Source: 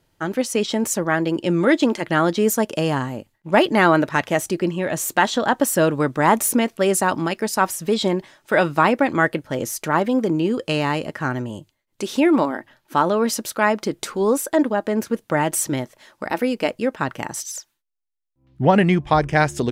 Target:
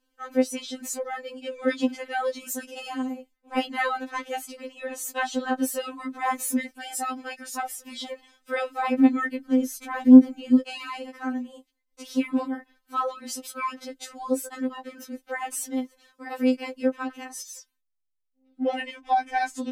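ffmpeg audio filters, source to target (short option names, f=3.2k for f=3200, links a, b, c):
-filter_complex "[0:a]asettb=1/sr,asplit=3[a][b][c];[a]atrim=end=8.944[d];[b]atrim=start=8.94:end=10.61,asetpts=PTS-STARTPTS,afade=t=in:d=0.004:c=qsin,afade=t=out:st=1.666:d=0.004:c=qsin,lowshelf=f=410:t=q:w=1.5:g=7.5[e];[c]atrim=start=10.606[f];[d][e]acrossfade=d=0.004:c1=hsin:c2=qsin[g];[g][f]acrossfade=d=0.004:c1=qsin:c2=hsin,afftfilt=real='re*3.46*eq(mod(b,12),0)':imag='im*3.46*eq(mod(b,12),0)':win_size=2048:overlap=0.75,volume=-6.5dB"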